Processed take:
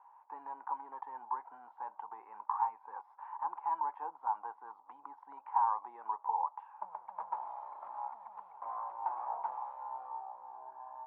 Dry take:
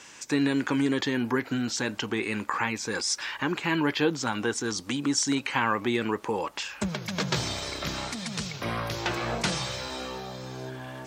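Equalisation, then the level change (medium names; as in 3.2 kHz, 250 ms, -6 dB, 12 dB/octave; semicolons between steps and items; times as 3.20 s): Butterworth band-pass 900 Hz, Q 4.2; distance through air 450 m; +4.5 dB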